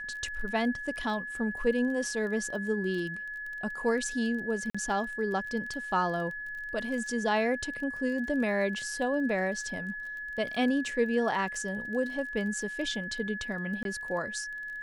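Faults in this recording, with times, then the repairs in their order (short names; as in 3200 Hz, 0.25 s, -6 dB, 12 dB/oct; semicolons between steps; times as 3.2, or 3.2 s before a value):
crackle 21/s -38 dBFS
tone 1700 Hz -36 dBFS
4.7–4.75 gap 45 ms
13.83–13.85 gap 22 ms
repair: de-click; notch 1700 Hz, Q 30; interpolate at 4.7, 45 ms; interpolate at 13.83, 22 ms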